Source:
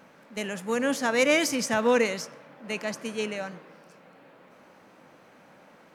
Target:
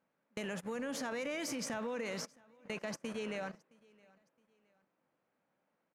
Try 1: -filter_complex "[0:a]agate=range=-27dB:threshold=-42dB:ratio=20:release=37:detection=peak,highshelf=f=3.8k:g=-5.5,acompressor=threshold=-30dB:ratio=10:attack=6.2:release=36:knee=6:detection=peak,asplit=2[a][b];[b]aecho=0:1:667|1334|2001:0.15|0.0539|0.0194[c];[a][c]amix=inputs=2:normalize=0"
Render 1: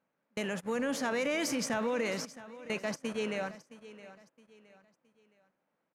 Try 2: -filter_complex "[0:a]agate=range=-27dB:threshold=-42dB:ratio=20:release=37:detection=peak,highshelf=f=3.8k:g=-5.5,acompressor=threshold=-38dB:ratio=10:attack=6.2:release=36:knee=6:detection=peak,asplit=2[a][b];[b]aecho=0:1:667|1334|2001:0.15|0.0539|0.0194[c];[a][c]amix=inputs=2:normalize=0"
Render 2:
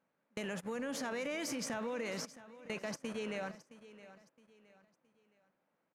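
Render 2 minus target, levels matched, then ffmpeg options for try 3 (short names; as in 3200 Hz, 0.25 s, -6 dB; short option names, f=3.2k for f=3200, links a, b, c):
echo-to-direct +9.5 dB
-filter_complex "[0:a]agate=range=-27dB:threshold=-42dB:ratio=20:release=37:detection=peak,highshelf=f=3.8k:g=-5.5,acompressor=threshold=-38dB:ratio=10:attack=6.2:release=36:knee=6:detection=peak,asplit=2[a][b];[b]aecho=0:1:667|1334:0.0501|0.018[c];[a][c]amix=inputs=2:normalize=0"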